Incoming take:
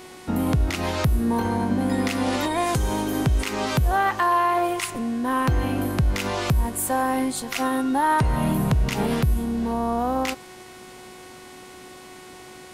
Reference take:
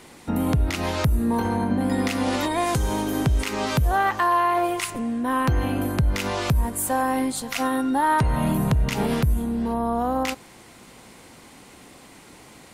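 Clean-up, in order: de-hum 368.9 Hz, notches 35

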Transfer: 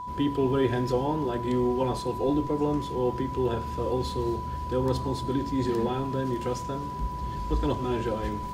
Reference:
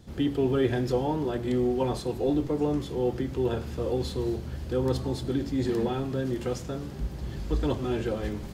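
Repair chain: band-stop 990 Hz, Q 30

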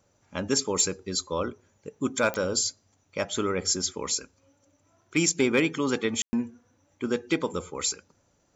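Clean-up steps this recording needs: clip repair -13.5 dBFS; de-click; room tone fill 6.22–6.33 s

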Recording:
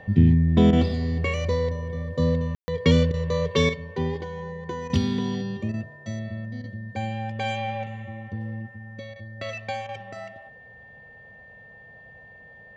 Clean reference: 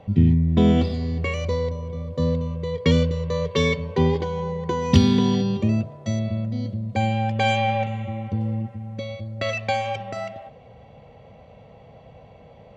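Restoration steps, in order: band-stop 1.8 kHz, Q 30; room tone fill 2.55–2.68 s; interpolate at 0.71/3.12/4.88/5.72/6.62/9.14/9.87 s, 17 ms; trim 0 dB, from 3.69 s +7.5 dB

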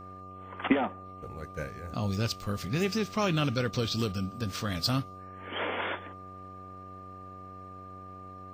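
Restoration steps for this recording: de-hum 94 Hz, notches 8; band-stop 1.2 kHz, Q 30

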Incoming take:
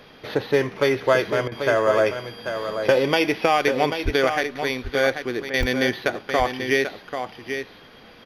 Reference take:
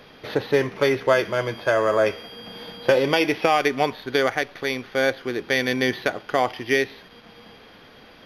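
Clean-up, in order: 4.04–4.16 s: high-pass 140 Hz 24 dB/octave; 5.59–5.71 s: high-pass 140 Hz 24 dB/octave; interpolate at 5.63 s, 2.2 ms; interpolate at 1.48/5.50 s, 36 ms; inverse comb 789 ms -8 dB

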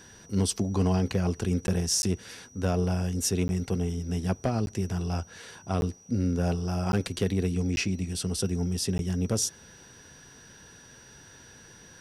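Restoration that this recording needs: clip repair -17 dBFS; band-stop 5.8 kHz, Q 30; interpolate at 1.67/2.02/3.48/4.66/5.81/6.92/7.76/8.98 s, 11 ms

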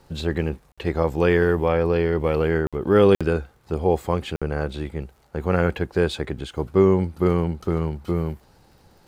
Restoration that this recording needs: de-click; interpolate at 0.72/2.67/3.15/4.36 s, 56 ms

